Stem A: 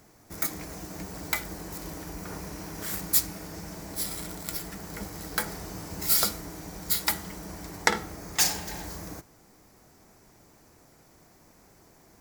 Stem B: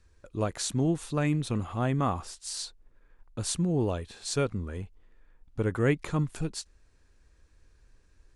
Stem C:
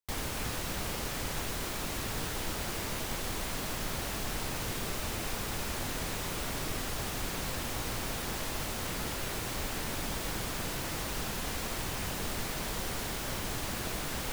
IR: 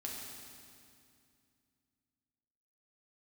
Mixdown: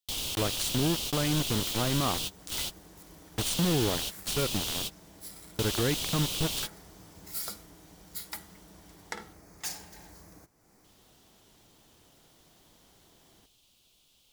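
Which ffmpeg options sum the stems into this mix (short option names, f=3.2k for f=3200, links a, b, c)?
-filter_complex "[0:a]acompressor=mode=upward:threshold=-39dB:ratio=2.5,adelay=1250,volume=-13.5dB[a];[1:a]aeval=exprs='val(0)*gte(abs(val(0)),0.0335)':c=same,volume=2.5dB,asplit=2[b][c];[2:a]highshelf=f=2.4k:t=q:w=3:g=9.5,volume=-5.5dB,asplit=3[d][e][f];[d]atrim=end=9.33,asetpts=PTS-STARTPTS,afade=t=out:st=9.326:d=0.004:c=hsin[g];[e]atrim=start=9.33:end=10.84,asetpts=PTS-STARTPTS,volume=0[h];[f]atrim=start=10.84,asetpts=PTS-STARTPTS,afade=t=in:d=0.004:c=hsin[i];[g][h][i]concat=n=3:v=0:a=1[j];[c]apad=whole_len=631641[k];[j][k]sidechaingate=range=-32dB:threshold=-44dB:ratio=16:detection=peak[l];[a][b]amix=inputs=2:normalize=0,equalizer=f=9.6k:w=6.9:g=4.5,alimiter=limit=-20dB:level=0:latency=1:release=91,volume=0dB[m];[l][m]amix=inputs=2:normalize=0"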